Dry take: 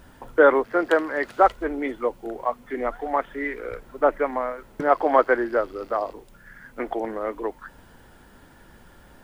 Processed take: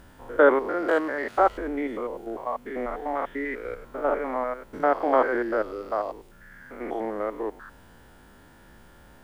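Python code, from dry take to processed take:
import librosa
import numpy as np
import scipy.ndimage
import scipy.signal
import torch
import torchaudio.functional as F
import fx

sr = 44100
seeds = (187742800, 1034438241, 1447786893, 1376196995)

y = fx.spec_steps(x, sr, hold_ms=100)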